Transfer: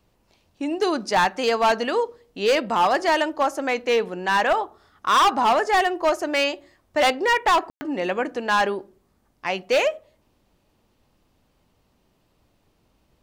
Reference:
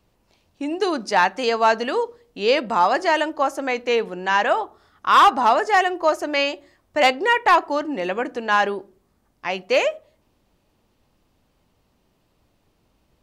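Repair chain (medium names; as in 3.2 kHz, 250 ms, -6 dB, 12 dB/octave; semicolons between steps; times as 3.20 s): clip repair -14 dBFS; room tone fill 7.70–7.81 s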